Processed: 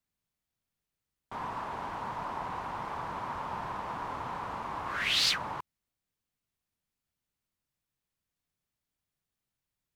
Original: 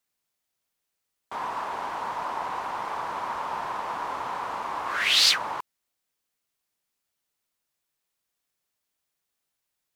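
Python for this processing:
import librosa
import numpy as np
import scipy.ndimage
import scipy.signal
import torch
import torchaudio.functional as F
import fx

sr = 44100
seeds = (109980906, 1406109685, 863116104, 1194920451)

y = fx.bass_treble(x, sr, bass_db=14, treble_db=-3)
y = y * 10.0 ** (-6.0 / 20.0)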